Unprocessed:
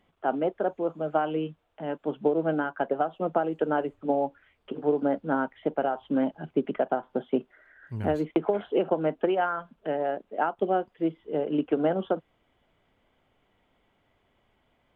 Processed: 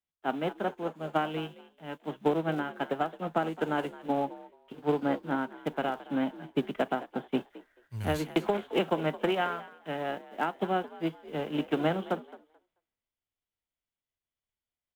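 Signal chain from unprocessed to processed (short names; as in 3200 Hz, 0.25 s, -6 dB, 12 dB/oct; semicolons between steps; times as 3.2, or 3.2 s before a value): spectral whitening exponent 0.6; frequency-shifting echo 0.218 s, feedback 35%, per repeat +54 Hz, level -14 dB; three-band expander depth 70%; gain -4 dB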